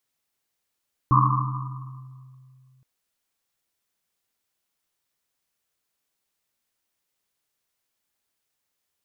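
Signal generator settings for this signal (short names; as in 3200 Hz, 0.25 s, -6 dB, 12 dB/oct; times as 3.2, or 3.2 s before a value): Risset drum length 1.72 s, pitch 130 Hz, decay 2.72 s, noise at 1100 Hz, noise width 230 Hz, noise 50%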